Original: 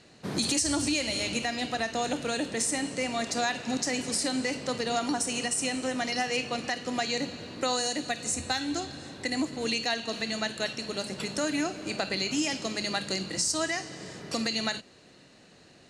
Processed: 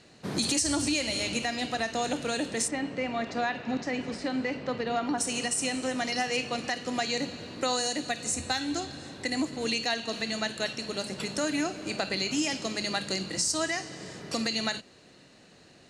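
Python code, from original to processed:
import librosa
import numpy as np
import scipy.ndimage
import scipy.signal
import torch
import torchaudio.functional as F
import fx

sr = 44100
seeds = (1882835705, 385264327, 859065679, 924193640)

y = fx.lowpass(x, sr, hz=2600.0, slope=12, at=(2.67, 5.17), fade=0.02)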